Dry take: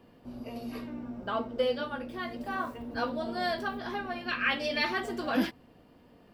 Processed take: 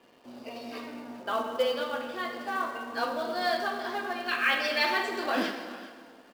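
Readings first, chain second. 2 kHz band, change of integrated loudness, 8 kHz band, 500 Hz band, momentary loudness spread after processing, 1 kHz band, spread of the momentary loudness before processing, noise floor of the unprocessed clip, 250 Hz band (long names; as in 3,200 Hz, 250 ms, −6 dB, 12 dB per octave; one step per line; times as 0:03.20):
+3.5 dB, +2.5 dB, can't be measured, +2.0 dB, 16 LU, +4.0 dB, 11 LU, −59 dBFS, −3.0 dB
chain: band-pass filter 290–6,000 Hz
spectral tilt +1.5 dB per octave
on a send: single-tap delay 403 ms −20 dB
on the sum: dynamic equaliser 3,000 Hz, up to −3 dB, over −43 dBFS, Q 0.71
dense smooth reverb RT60 1.8 s, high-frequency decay 0.75×, DRR 3.5 dB
in parallel at −9 dB: log-companded quantiser 4 bits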